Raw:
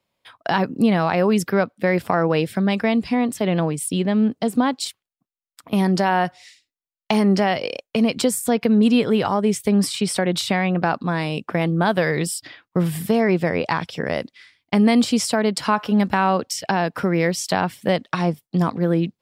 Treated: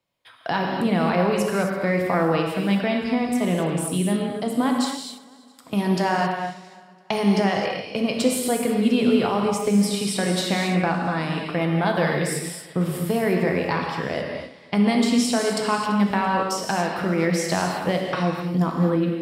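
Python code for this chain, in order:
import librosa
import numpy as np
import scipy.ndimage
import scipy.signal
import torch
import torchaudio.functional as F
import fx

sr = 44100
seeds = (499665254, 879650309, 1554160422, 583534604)

p1 = x + fx.echo_feedback(x, sr, ms=336, feedback_pct=41, wet_db=-21.0, dry=0)
p2 = fx.rev_gated(p1, sr, seeds[0], gate_ms=290, shape='flat', drr_db=0.0)
y = p2 * librosa.db_to_amplitude(-4.5)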